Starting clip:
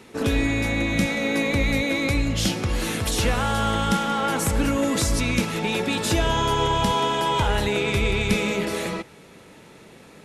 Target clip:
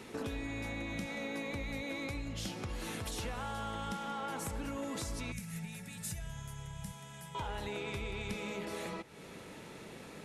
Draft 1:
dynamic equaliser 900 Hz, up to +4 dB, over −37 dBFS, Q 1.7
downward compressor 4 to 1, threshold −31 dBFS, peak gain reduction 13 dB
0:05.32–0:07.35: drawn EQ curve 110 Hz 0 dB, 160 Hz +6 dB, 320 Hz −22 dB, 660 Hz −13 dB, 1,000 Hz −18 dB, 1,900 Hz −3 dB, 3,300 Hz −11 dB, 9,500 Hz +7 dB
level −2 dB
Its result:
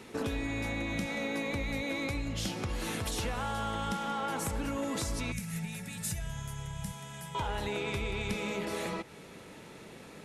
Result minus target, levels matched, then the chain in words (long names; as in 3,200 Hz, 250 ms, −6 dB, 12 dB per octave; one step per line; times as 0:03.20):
downward compressor: peak gain reduction −5 dB
dynamic equaliser 900 Hz, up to +4 dB, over −37 dBFS, Q 1.7
downward compressor 4 to 1, threshold −38 dBFS, peak gain reduction 18 dB
0:05.32–0:07.35: drawn EQ curve 110 Hz 0 dB, 160 Hz +6 dB, 320 Hz −22 dB, 660 Hz −13 dB, 1,000 Hz −18 dB, 1,900 Hz −3 dB, 3,300 Hz −11 dB, 9,500 Hz +7 dB
level −2 dB